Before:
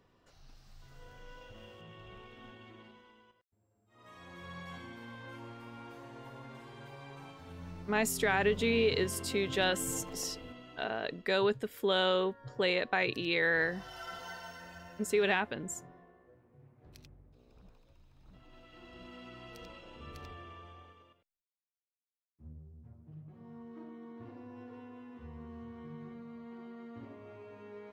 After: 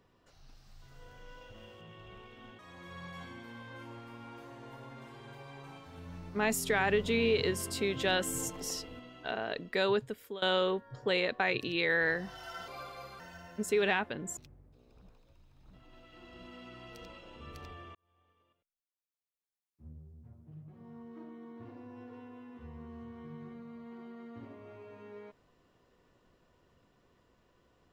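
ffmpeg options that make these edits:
-filter_complex "[0:a]asplit=7[a][b][c][d][e][f][g];[a]atrim=end=2.592[h];[b]atrim=start=4.118:end=11.95,asetpts=PTS-STARTPTS,afade=t=out:st=7.232:d=0.6:c=qsin:silence=0.0944061[i];[c]atrim=start=11.95:end=14.214,asetpts=PTS-STARTPTS,afade=t=in:d=0.004:c=hsin:silence=0.0944061[j];[d]atrim=start=14.21:end=14.61,asetpts=PTS-STARTPTS,asetrate=33957,aresample=44100,atrim=end_sample=22909,asetpts=PTS-STARTPTS[k];[e]atrim=start=14.606:end=15.782[l];[f]atrim=start=16.968:end=20.55,asetpts=PTS-STARTPTS,afade=t=out:st=3.578:d=0.004:c=hsin[m];[g]atrim=start=20.55,asetpts=PTS-STARTPTS,afade=t=in:d=1.96[n];[i][j]concat=n=2:v=0:a=1[o];[h][o]acrossfade=d=0.004:c1=hsin:c2=hsin[p];[p][k]acrossfade=d=0.004:c1=hsin:c2=hsin[q];[q][l]acrossfade=d=0.004:c1=hsin:c2=hsin[r];[m][n]concat=n=2:v=0:a=1[s];[r][s]acrossfade=d=0.004:c1=hsin:c2=hsin"

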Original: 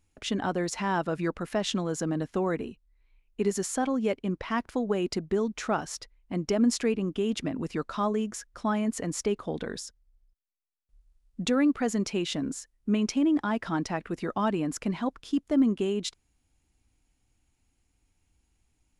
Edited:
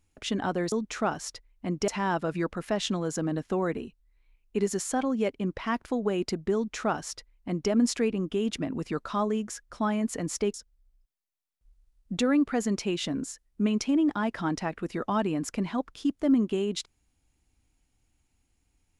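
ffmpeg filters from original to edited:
-filter_complex "[0:a]asplit=4[a][b][c][d];[a]atrim=end=0.722[e];[b]atrim=start=5.388:end=6.552[f];[c]atrim=start=0.718:end=9.382[g];[d]atrim=start=9.818[h];[e][f]acrossfade=d=0.004:c1=hsin:c2=hsin[i];[i][g]acrossfade=d=0.004:c1=hsin:c2=hsin[j];[j][h]acrossfade=d=0.004:c1=hsin:c2=hsin"

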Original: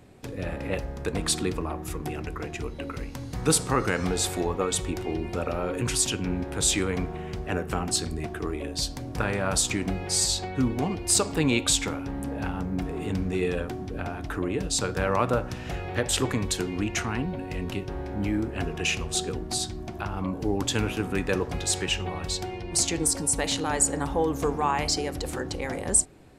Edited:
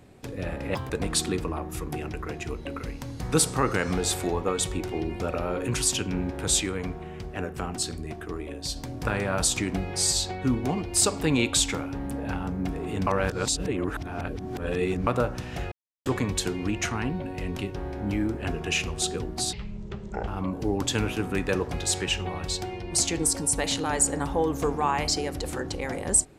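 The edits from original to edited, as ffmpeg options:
-filter_complex "[0:a]asplit=11[a][b][c][d][e][f][g][h][i][j][k];[a]atrim=end=0.754[l];[b]atrim=start=0.75:end=1.03,asetpts=PTS-STARTPTS,asetrate=83790,aresample=44100[m];[c]atrim=start=1.026:end=6.732[n];[d]atrim=start=6.728:end=8.892,asetpts=PTS-STARTPTS,volume=-3.5dB[o];[e]atrim=start=8.888:end=13.202[p];[f]atrim=start=13.198:end=15.202,asetpts=PTS-STARTPTS,areverse[q];[g]atrim=start=15.198:end=15.85,asetpts=PTS-STARTPTS,afade=t=out:st=0.648:d=0.004:c=hsin[r];[h]atrim=start=15.85:end=16.19,asetpts=PTS-STARTPTS,volume=0[s];[i]atrim=start=16.19:end=19.664,asetpts=PTS-STARTPTS,afade=t=in:d=0.004:c=hsin[t];[j]atrim=start=19.66:end=20.08,asetpts=PTS-STARTPTS,asetrate=24696,aresample=44100[u];[k]atrim=start=20.076[v];[l][m]acrossfade=d=0.004:c1=hsin:c2=hsin[w];[w][n]acrossfade=d=0.004:c1=hsin:c2=hsin[x];[x][o]acrossfade=d=0.004:c1=hsin:c2=hsin[y];[y][p]acrossfade=d=0.004:c1=hsin:c2=hsin[z];[z][q]acrossfade=d=0.004:c1=hsin:c2=hsin[aa];[r][s][t]concat=n=3:v=0:a=1[ab];[aa][ab]acrossfade=d=0.004:c1=hsin:c2=hsin[ac];[ac][u]acrossfade=d=0.004:c1=hsin:c2=hsin[ad];[ad][v]acrossfade=d=0.004:c1=hsin:c2=hsin"

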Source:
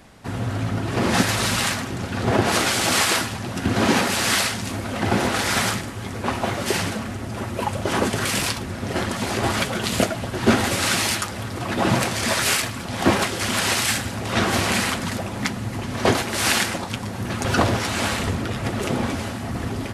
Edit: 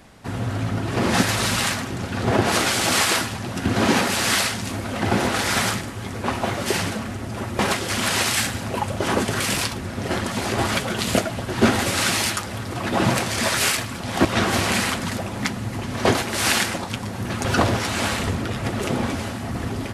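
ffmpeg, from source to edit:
-filter_complex "[0:a]asplit=4[a][b][c][d];[a]atrim=end=7.592[e];[b]atrim=start=13.098:end=14.252[f];[c]atrim=start=7.588:end=13.102[g];[d]atrim=start=14.248[h];[e][f]acrossfade=d=0.004:c1=hsin:c2=hsin[i];[i][g]acrossfade=d=0.004:c1=hsin:c2=hsin[j];[j][h]acrossfade=d=0.004:c1=hsin:c2=hsin"

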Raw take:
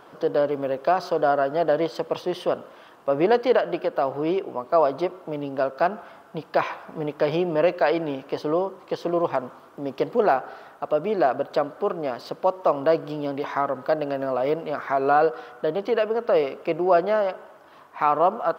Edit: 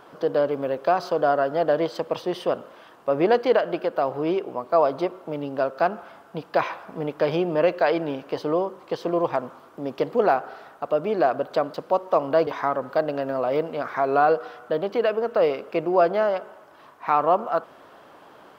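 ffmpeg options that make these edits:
-filter_complex "[0:a]asplit=3[a][b][c];[a]atrim=end=11.742[d];[b]atrim=start=12.268:end=13.002[e];[c]atrim=start=13.398[f];[d][e]acrossfade=d=0.004:c1=hsin:c2=hsin[g];[g][f]acrossfade=d=0.004:c1=hsin:c2=hsin"

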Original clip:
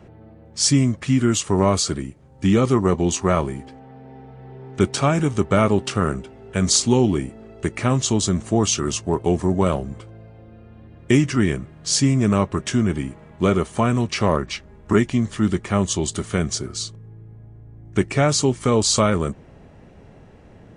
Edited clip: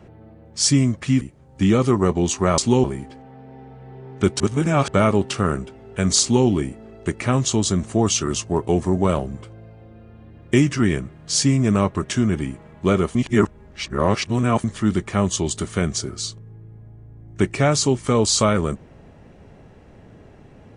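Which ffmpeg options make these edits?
-filter_complex "[0:a]asplit=8[a][b][c][d][e][f][g][h];[a]atrim=end=1.212[i];[b]atrim=start=2.038:end=3.412[j];[c]atrim=start=6.778:end=7.042[k];[d]atrim=start=3.408:end=4.972[l];[e]atrim=start=4.968:end=5.452,asetpts=PTS-STARTPTS,areverse[m];[f]atrim=start=5.448:end=13.722[n];[g]atrim=start=13.718:end=15.212,asetpts=PTS-STARTPTS,areverse[o];[h]atrim=start=15.208[p];[i][j]acrossfade=d=0.004:c1=hsin:c2=hsin[q];[q][k]acrossfade=d=0.004:c1=hsin:c2=hsin[r];[r][l]acrossfade=d=0.004:c1=hsin:c2=hsin[s];[s][m]acrossfade=d=0.004:c1=hsin:c2=hsin[t];[t][n]acrossfade=d=0.004:c1=hsin:c2=hsin[u];[u][o]acrossfade=d=0.004:c1=hsin:c2=hsin[v];[v][p]acrossfade=d=0.004:c1=hsin:c2=hsin"

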